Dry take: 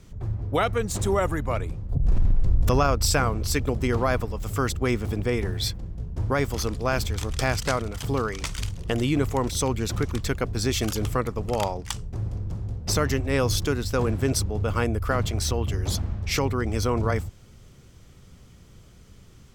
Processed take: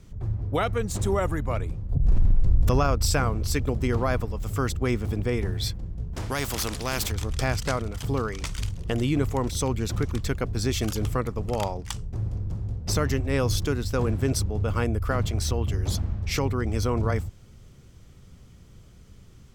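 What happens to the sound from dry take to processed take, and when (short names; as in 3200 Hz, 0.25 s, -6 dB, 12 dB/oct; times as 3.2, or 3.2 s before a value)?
6.13–7.12 spectral compressor 2:1
whole clip: low shelf 270 Hz +4 dB; gain -3 dB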